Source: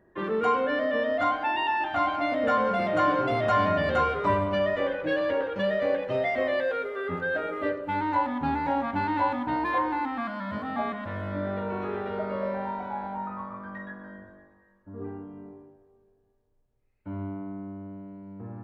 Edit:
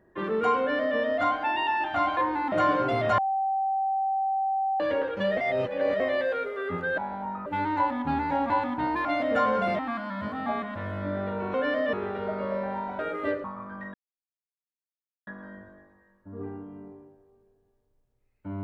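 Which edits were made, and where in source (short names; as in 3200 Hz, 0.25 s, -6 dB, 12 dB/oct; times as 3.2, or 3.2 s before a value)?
0.59–0.98 copy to 11.84
2.17–2.91 swap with 9.74–10.09
3.57–5.19 bleep 775 Hz -23.5 dBFS
5.76–6.39 reverse
7.37–7.82 swap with 12.9–13.38
8.86–9.19 cut
13.88 insert silence 1.33 s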